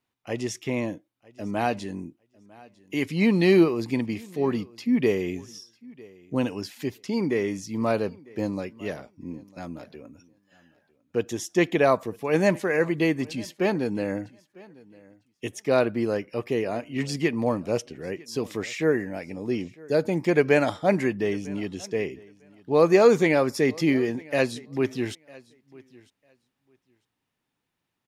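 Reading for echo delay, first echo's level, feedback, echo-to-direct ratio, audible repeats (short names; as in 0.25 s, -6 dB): 0.951 s, -23.5 dB, no steady repeat, -23.5 dB, 1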